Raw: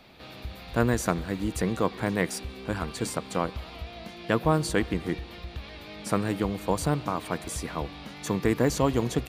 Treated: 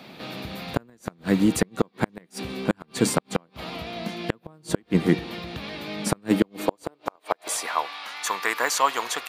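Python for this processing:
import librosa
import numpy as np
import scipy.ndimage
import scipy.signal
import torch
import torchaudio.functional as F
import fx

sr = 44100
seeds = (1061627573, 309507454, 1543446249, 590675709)

y = fx.filter_sweep_highpass(x, sr, from_hz=170.0, to_hz=1100.0, start_s=6.17, end_s=7.93, q=1.5)
y = fx.gate_flip(y, sr, shuts_db=-14.0, range_db=-38)
y = y * librosa.db_to_amplitude(8.0)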